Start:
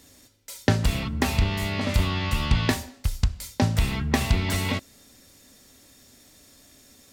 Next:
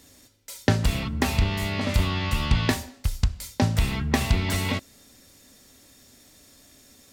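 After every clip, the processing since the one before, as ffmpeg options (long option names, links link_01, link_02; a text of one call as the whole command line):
ffmpeg -i in.wav -af anull out.wav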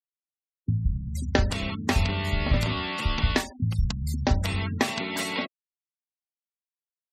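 ffmpeg -i in.wav -filter_complex "[0:a]bandreject=frequency=50:width_type=h:width=6,bandreject=frequency=100:width_type=h:width=6,acrossover=split=190[link_01][link_02];[link_02]adelay=670[link_03];[link_01][link_03]amix=inputs=2:normalize=0,afftfilt=real='re*gte(hypot(re,im),0.0178)':imag='im*gte(hypot(re,im),0.0178)':win_size=1024:overlap=0.75" out.wav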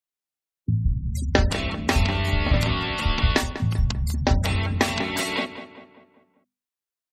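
ffmpeg -i in.wav -filter_complex "[0:a]bandreject=frequency=50:width_type=h:width=6,bandreject=frequency=100:width_type=h:width=6,bandreject=frequency=150:width_type=h:width=6,bandreject=frequency=200:width_type=h:width=6,bandreject=frequency=250:width_type=h:width=6,asplit=2[link_01][link_02];[link_02]adelay=196,lowpass=frequency=2500:poles=1,volume=-11dB,asplit=2[link_03][link_04];[link_04]adelay=196,lowpass=frequency=2500:poles=1,volume=0.5,asplit=2[link_05][link_06];[link_06]adelay=196,lowpass=frequency=2500:poles=1,volume=0.5,asplit=2[link_07][link_08];[link_08]adelay=196,lowpass=frequency=2500:poles=1,volume=0.5,asplit=2[link_09][link_10];[link_10]adelay=196,lowpass=frequency=2500:poles=1,volume=0.5[link_11];[link_01][link_03][link_05][link_07][link_09][link_11]amix=inputs=6:normalize=0,volume=3.5dB" out.wav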